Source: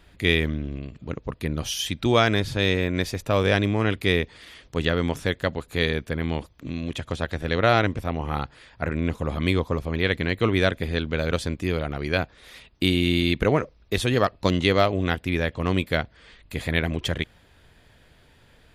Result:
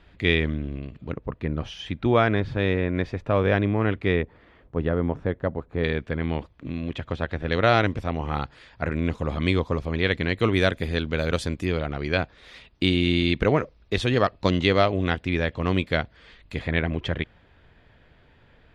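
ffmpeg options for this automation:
ffmpeg -i in.wav -af "asetnsamples=nb_out_samples=441:pad=0,asendcmd='1.13 lowpass f 2000;4.22 lowpass f 1100;5.84 lowpass f 2900;7.52 lowpass f 6300;10.39 lowpass f 11000;11.65 lowpass f 5200;16.59 lowpass f 2800',lowpass=3700" out.wav

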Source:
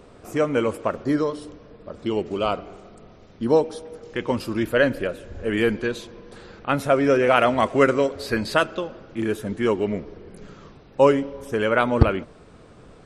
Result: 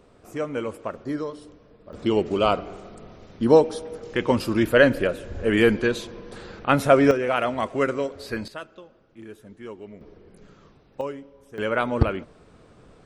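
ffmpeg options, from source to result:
ffmpeg -i in.wav -af "asetnsamples=nb_out_samples=441:pad=0,asendcmd='1.93 volume volume 3dB;7.11 volume volume -6dB;8.48 volume volume -17dB;10.01 volume volume -8dB;11.01 volume volume -16dB;11.58 volume volume -4dB',volume=-7dB" out.wav

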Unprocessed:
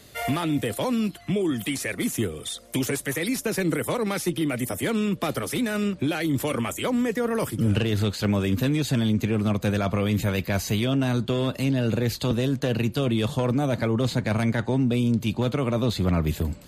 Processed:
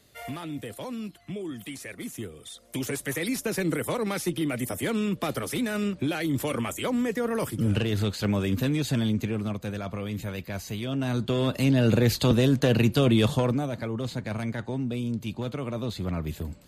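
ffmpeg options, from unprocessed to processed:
ffmpeg -i in.wav -af "volume=9.5dB,afade=type=in:start_time=2.49:duration=0.62:silence=0.398107,afade=type=out:start_time=9.04:duration=0.59:silence=0.473151,afade=type=in:start_time=10.79:duration=1.11:silence=0.251189,afade=type=out:start_time=13.23:duration=0.47:silence=0.298538" out.wav

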